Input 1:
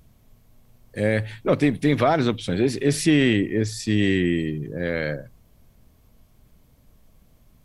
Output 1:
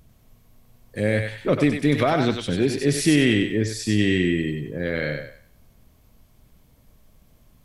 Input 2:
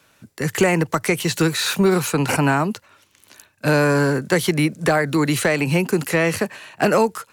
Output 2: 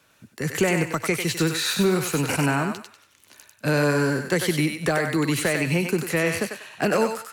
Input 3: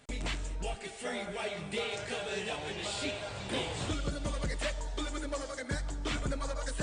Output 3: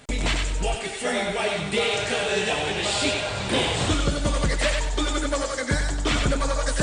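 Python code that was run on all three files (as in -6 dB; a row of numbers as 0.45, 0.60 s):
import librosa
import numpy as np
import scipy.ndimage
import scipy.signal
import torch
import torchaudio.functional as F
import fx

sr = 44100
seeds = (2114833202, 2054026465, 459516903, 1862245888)

p1 = fx.dynamic_eq(x, sr, hz=890.0, q=1.3, threshold_db=-35.0, ratio=4.0, max_db=-4)
p2 = p1 + fx.echo_thinned(p1, sr, ms=96, feedback_pct=34, hz=740.0, wet_db=-3.5, dry=0)
y = p2 * 10.0 ** (-24 / 20.0) / np.sqrt(np.mean(np.square(p2)))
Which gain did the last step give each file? 0.0, -4.0, +11.0 dB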